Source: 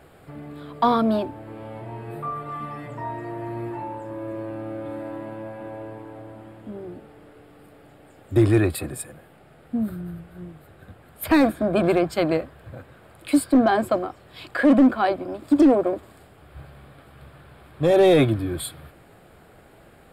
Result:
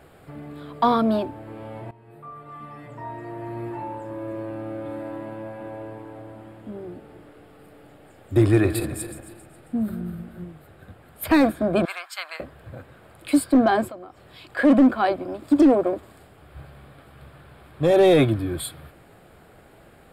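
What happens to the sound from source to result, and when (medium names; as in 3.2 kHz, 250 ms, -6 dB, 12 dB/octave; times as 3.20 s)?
1.91–3.89 s: fade in, from -17.5 dB
6.91–10.44 s: backward echo that repeats 135 ms, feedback 57%, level -11 dB
11.85–12.40 s: high-pass 1.1 kHz 24 dB/octave
13.88–14.57 s: compression 2.5:1, threshold -43 dBFS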